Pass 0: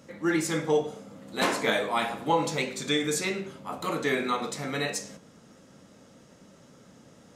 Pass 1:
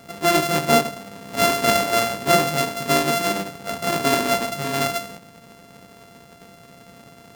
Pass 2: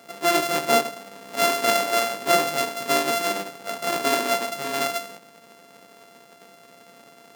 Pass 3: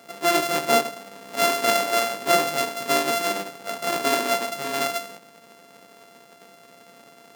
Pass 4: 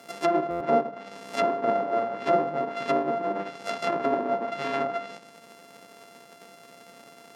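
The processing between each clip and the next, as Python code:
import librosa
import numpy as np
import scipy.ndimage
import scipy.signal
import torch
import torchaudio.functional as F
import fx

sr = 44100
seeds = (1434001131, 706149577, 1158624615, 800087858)

y1 = np.r_[np.sort(x[:len(x) // 64 * 64].reshape(-1, 64), axis=1).ravel(), x[len(x) // 64 * 64:]]
y1 = y1 * 10.0 ** (7.5 / 20.0)
y2 = scipy.signal.sosfilt(scipy.signal.butter(2, 300.0, 'highpass', fs=sr, output='sos'), y1)
y2 = y2 * 10.0 ** (-2.0 / 20.0)
y3 = y2
y4 = np.r_[np.sort(y3[:len(y3) // 8 * 8].reshape(-1, 8), axis=1).ravel(), y3[len(y3) // 8 * 8:]]
y4 = fx.env_lowpass_down(y4, sr, base_hz=850.0, full_db=-19.5)
y4 = fx.buffer_glitch(y4, sr, at_s=(0.5,), block=512, repeats=8)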